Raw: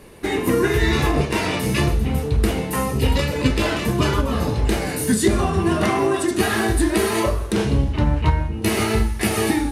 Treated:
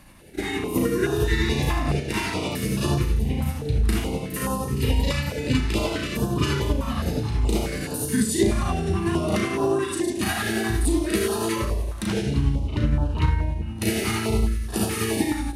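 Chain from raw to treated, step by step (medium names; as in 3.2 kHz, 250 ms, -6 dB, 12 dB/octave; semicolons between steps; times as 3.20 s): granular stretch 1.6×, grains 189 ms; step-sequenced notch 4.7 Hz 430–2100 Hz; trim -2 dB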